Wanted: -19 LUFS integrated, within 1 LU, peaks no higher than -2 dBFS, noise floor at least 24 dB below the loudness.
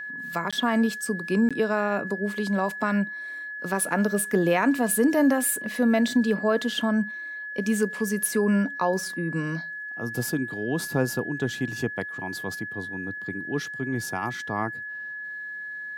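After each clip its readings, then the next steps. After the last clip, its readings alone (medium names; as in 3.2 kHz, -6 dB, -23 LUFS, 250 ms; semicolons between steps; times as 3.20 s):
dropouts 2; longest dropout 16 ms; steady tone 1.7 kHz; tone level -33 dBFS; loudness -26.0 LUFS; peak level -9.5 dBFS; loudness target -19.0 LUFS
-> interpolate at 0.51/1.49 s, 16 ms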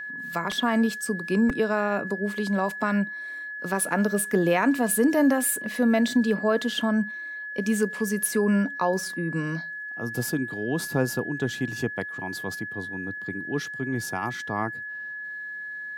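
dropouts 0; steady tone 1.7 kHz; tone level -33 dBFS
-> band-stop 1.7 kHz, Q 30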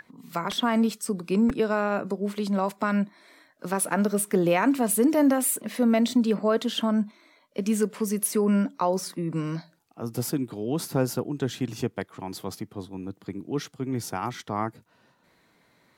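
steady tone not found; loudness -26.5 LUFS; peak level -10.0 dBFS; loudness target -19.0 LUFS
-> trim +7.5 dB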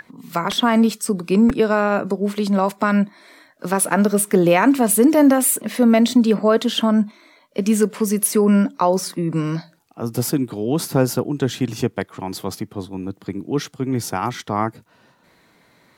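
loudness -19.0 LUFS; peak level -2.5 dBFS; noise floor -57 dBFS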